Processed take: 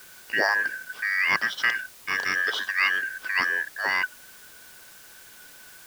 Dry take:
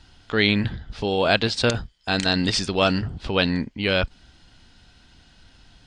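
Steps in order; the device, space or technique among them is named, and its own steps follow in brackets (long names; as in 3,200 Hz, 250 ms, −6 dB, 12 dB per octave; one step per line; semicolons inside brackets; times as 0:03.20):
split-band scrambled radio (band-splitting scrambler in four parts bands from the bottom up 2143; band-pass filter 340–3,300 Hz; white noise bed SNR 21 dB)
level −2.5 dB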